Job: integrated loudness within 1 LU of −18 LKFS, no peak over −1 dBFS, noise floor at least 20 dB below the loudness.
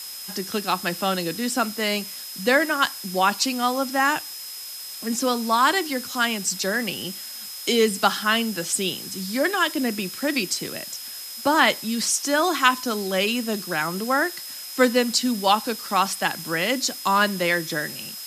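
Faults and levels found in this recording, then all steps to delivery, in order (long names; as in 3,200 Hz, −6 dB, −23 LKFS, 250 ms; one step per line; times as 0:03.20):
interfering tone 5,100 Hz; level of the tone −37 dBFS; background noise floor −36 dBFS; target noise floor −43 dBFS; integrated loudness −23.0 LKFS; sample peak −4.0 dBFS; target loudness −18.0 LKFS
→ notch filter 5,100 Hz, Q 30
noise reduction from a noise print 7 dB
level +5 dB
brickwall limiter −1 dBFS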